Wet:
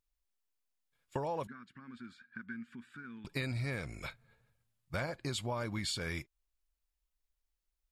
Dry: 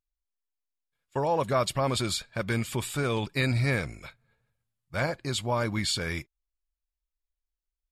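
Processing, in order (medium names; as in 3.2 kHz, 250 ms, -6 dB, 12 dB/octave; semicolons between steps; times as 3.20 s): compression 6:1, threshold -37 dBFS, peak gain reduction 15 dB; 1.47–3.25 s: two resonant band-passes 610 Hz, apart 2.7 oct; trim +2.5 dB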